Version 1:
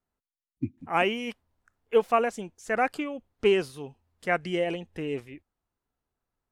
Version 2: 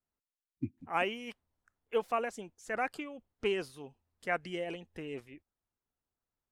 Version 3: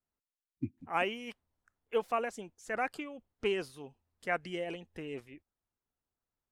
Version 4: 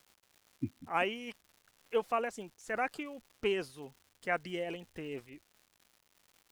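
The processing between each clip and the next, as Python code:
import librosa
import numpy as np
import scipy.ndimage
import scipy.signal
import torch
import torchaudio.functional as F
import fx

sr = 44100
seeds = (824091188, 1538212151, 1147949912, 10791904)

y1 = fx.hpss(x, sr, part='harmonic', gain_db=-5)
y1 = y1 * librosa.db_to_amplitude(-5.5)
y2 = y1
y3 = fx.dmg_crackle(y2, sr, seeds[0], per_s=260.0, level_db=-50.0)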